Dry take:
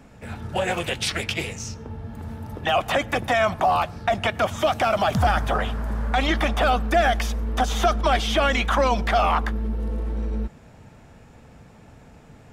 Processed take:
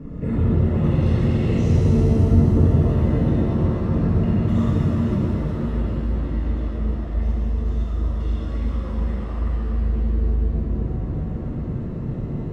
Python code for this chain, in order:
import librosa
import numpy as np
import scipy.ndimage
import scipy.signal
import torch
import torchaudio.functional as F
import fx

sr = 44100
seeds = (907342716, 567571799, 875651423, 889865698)

y = fx.over_compress(x, sr, threshold_db=-33.0, ratio=-1.0)
y = np.convolve(y, np.full(56, 1.0 / 56))[:len(y)]
y = fx.rev_shimmer(y, sr, seeds[0], rt60_s=3.6, semitones=7, shimmer_db=-8, drr_db=-8.0)
y = y * 10.0 ** (5.0 / 20.0)